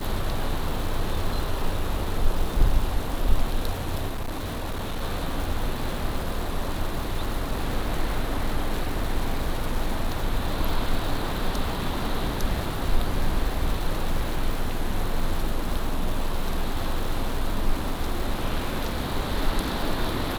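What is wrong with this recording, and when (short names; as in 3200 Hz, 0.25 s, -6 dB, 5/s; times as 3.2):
crackle 440/s -31 dBFS
4.09–5.01 clipped -25 dBFS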